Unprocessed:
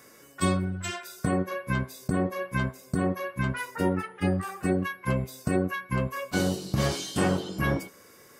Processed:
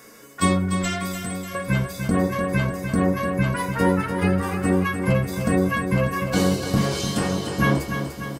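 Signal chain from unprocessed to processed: 1.12–1.55 s: pre-emphasis filter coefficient 0.8; 6.76–7.57 s: compression, threshold -26 dBFS, peak gain reduction 7 dB; feedback delay 296 ms, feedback 59%, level -7.5 dB; reverberation, pre-delay 4 ms, DRR 4.5 dB; trim +5 dB

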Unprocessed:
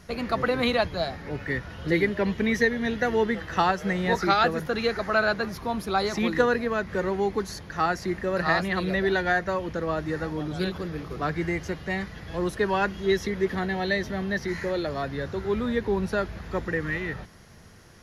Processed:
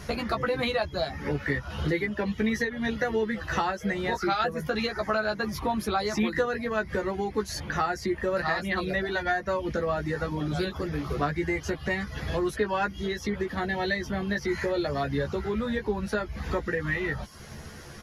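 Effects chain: reverb removal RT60 0.51 s; compression 4:1, threshold -36 dBFS, peak gain reduction 16.5 dB; doubling 14 ms -4.5 dB; trim +8 dB

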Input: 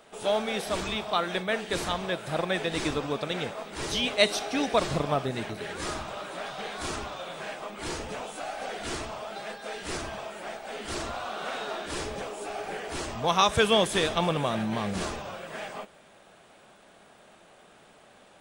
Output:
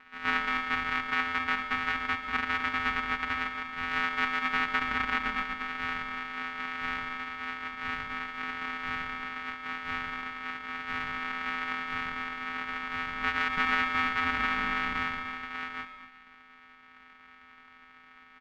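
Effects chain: sorted samples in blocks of 128 samples; ring modulator 90 Hz; comb 3.9 ms, depth 31%; delay 236 ms -12.5 dB; peak limiter -20 dBFS, peak gain reduction 12 dB; FFT filter 160 Hz 0 dB, 550 Hz -10 dB, 1.3 kHz +14 dB, 2.2 kHz +15 dB, 10 kHz -23 dB; reverberation RT60 0.35 s, pre-delay 95 ms, DRR 11.5 dB; trim -4 dB

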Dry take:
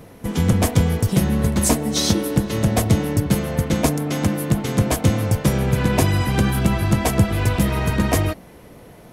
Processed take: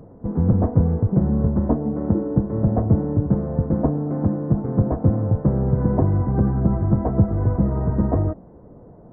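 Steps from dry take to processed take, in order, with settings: Gaussian low-pass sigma 8.9 samples

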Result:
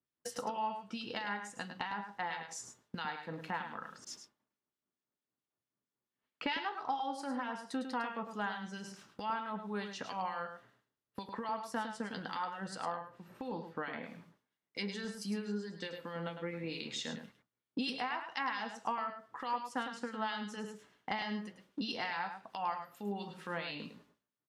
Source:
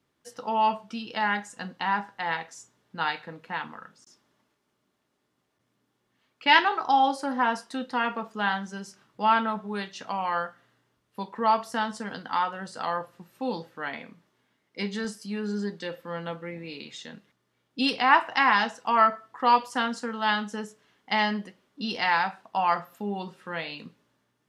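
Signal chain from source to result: expander -53 dBFS; 12.75–14.03 s: treble shelf 3.4 kHz -10.5 dB; compression 4:1, threshold -53 dBFS, peak gain reduction 32 dB; harmonic tremolo 4.5 Hz, depth 70%, crossover 1.9 kHz; delay 105 ms -8.5 dB; trim +15 dB

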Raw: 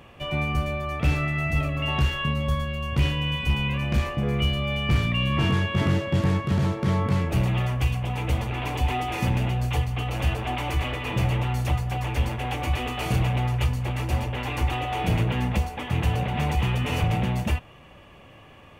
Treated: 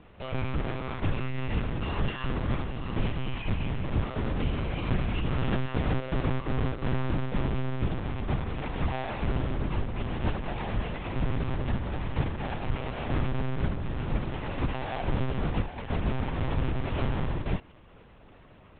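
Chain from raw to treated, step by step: square wave that keeps the level; monotone LPC vocoder at 8 kHz 130 Hz; distance through air 150 m; trim -8.5 dB

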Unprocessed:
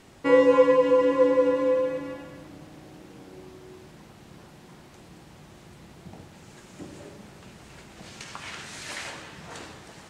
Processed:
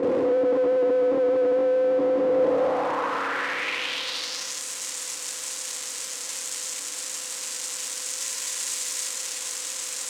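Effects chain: spectral levelling over time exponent 0.4; bass shelf 440 Hz +7 dB; gate with hold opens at -20 dBFS; compression, threshold -23 dBFS, peak gain reduction 14 dB; fuzz box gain 50 dB, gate -59 dBFS; band-pass sweep 410 Hz -> 7.5 kHz, 2.30–4.63 s; trim -3 dB

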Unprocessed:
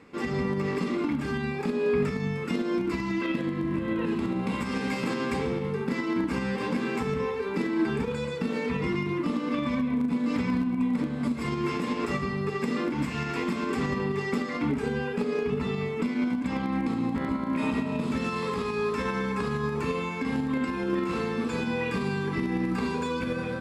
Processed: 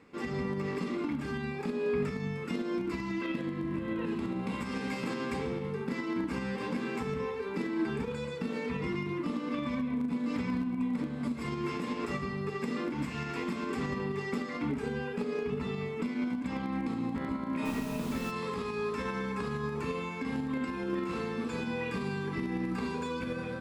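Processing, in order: 17.64–18.30 s: added noise pink -41 dBFS; trim -5.5 dB

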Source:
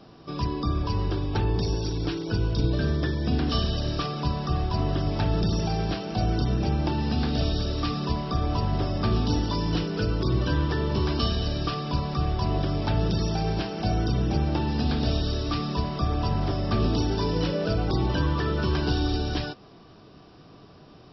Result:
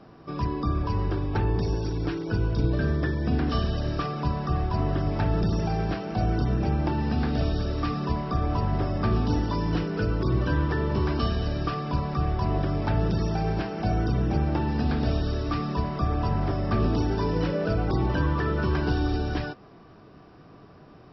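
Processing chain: resonant high shelf 2.6 kHz -6.5 dB, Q 1.5

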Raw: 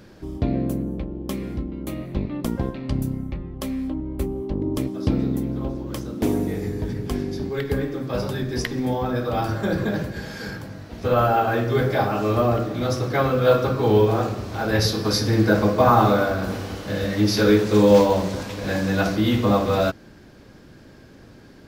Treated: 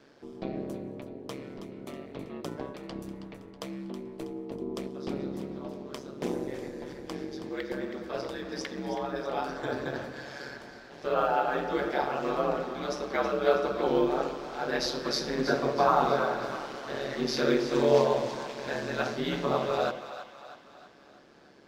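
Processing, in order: three-band isolator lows -22 dB, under 250 Hz, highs -14 dB, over 8 kHz; ring modulator 69 Hz; two-band feedback delay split 630 Hz, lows 104 ms, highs 322 ms, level -10.5 dB; trim -4 dB

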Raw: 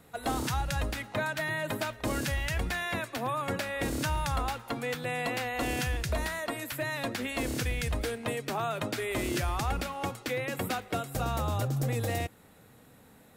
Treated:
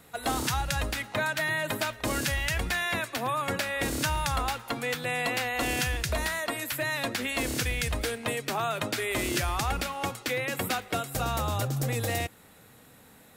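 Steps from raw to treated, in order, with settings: tilt shelf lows -3 dB, about 1.1 kHz; trim +3 dB

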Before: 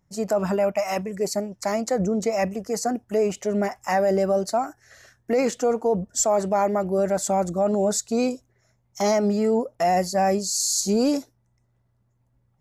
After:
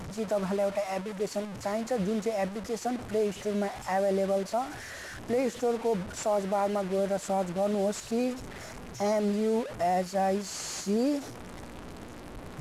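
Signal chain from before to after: one-bit delta coder 64 kbps, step -26.5 dBFS; treble shelf 3.3 kHz -8 dB; hum notches 60/120 Hz; trim -6 dB

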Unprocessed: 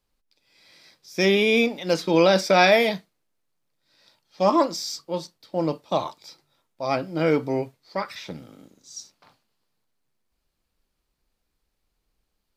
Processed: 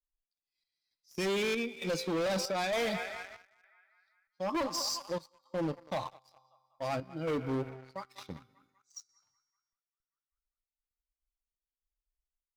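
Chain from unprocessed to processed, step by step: expander on every frequency bin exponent 1.5; feedback comb 130 Hz, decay 1.6 s, mix 50%; on a send: band-passed feedback delay 195 ms, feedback 67%, band-pass 1.5 kHz, level -15.5 dB; on the sum: waveshaping leveller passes 2; in parallel at +2 dB: compression, threshold -31 dBFS, peak gain reduction 13.5 dB; on the sum: square tremolo 1.1 Hz, depth 65%, duty 70%; peak limiter -15.5 dBFS, peak gain reduction 4.5 dB; one-sided clip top -24.5 dBFS, bottom -21.5 dBFS; trim -6 dB

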